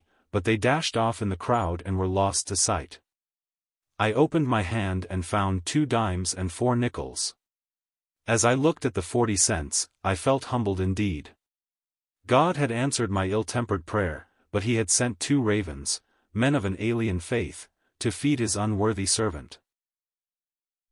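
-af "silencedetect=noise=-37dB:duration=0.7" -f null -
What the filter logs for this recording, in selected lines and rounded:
silence_start: 2.95
silence_end: 4.00 | silence_duration: 1.05
silence_start: 7.30
silence_end: 8.28 | silence_duration: 0.98
silence_start: 11.27
silence_end: 12.29 | silence_duration: 1.02
silence_start: 19.54
silence_end: 20.91 | silence_duration: 1.38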